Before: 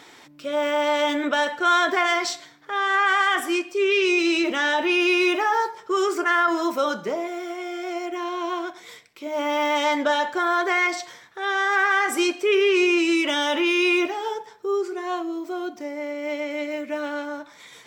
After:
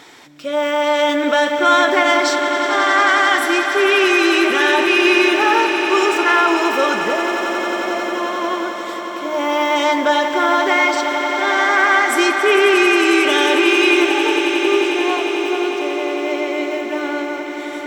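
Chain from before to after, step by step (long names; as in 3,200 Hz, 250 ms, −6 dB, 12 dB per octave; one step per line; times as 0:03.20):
echo that builds up and dies away 90 ms, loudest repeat 8, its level −13 dB
level +5 dB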